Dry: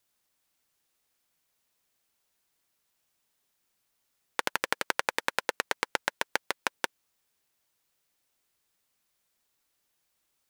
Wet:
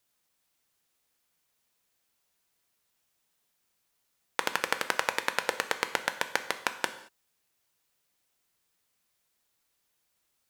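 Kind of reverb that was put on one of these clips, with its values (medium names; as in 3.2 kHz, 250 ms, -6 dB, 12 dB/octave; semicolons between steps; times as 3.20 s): gated-style reverb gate 250 ms falling, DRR 8.5 dB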